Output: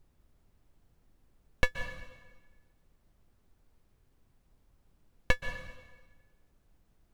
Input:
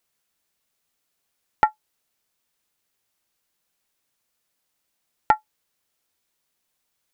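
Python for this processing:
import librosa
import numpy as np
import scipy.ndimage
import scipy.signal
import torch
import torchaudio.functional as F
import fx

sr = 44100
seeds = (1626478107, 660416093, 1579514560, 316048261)

y = scipy.signal.sosfilt(scipy.signal.butter(2, 510.0, 'highpass', fs=sr, output='sos'), x)
y = np.abs(y)
y = fx.dmg_noise_colour(y, sr, seeds[0], colour='brown', level_db=-60.0)
y = fx.rev_plate(y, sr, seeds[1], rt60_s=1.3, hf_ratio=0.9, predelay_ms=115, drr_db=8.5)
y = y * 10.0 ** (-5.0 / 20.0)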